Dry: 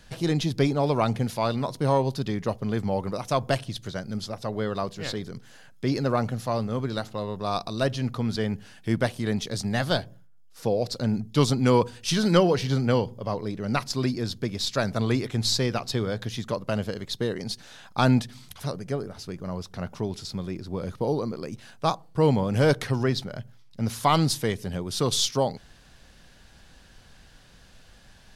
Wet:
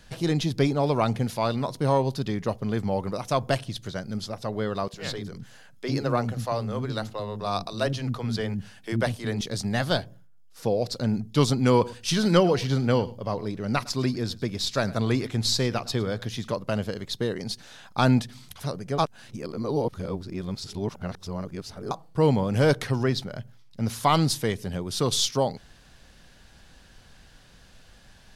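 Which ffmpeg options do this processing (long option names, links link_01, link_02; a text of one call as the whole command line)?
ffmpeg -i in.wav -filter_complex "[0:a]asettb=1/sr,asplit=3[link_01][link_02][link_03];[link_01]atrim=end=4.884[link_04];[link_02]atrim=start=4.88:end=9.41,asetpts=PTS-STARTPTS,afade=type=in:duration=0.004:curve=qsin,afade=type=out:start_time=4.526:duration=0.004:curve=qsin,acrossover=split=300[link_05][link_06];[link_05]adelay=50[link_07];[link_07][link_06]amix=inputs=2:normalize=0,atrim=end_sample=199773[link_08];[link_03]atrim=start=9.406[link_09];[link_04][link_08]acrossfade=duration=0.004:curve1=hsin:curve2=qsin[link_10];[link_10][link_09]acrossfade=duration=0.004:curve1=qsin:curve2=hsin,asettb=1/sr,asplit=3[link_11][link_12][link_13];[link_11]atrim=end=11.684[link_14];[link_12]atrim=start=11.68:end=16.53,asetpts=PTS-STARTPTS,afade=type=in:duration=0.004:curve=qsin,afade=type=out:start_time=4.846:duration=0.004:curve=qsin,aecho=1:1:108:0.0944,atrim=end_sample=213885[link_15];[link_13]atrim=start=16.526[link_16];[link_14][link_15]acrossfade=duration=0.004:curve1=hsin:curve2=qsin[link_17];[link_17][link_16]acrossfade=duration=0.004:curve1=qsin:curve2=hsin,asplit=3[link_18][link_19][link_20];[link_18]atrim=end=18.982[link_21];[link_19]atrim=start=18.978:end=21.912,asetpts=PTS-STARTPTS,areverse[link_22];[link_20]atrim=start=21.908[link_23];[link_21][link_22]acrossfade=duration=0.004:curve1=hsin:curve2=hsin[link_24];[link_24][link_23]acrossfade=duration=0.004:curve1=hsin:curve2=hsin" out.wav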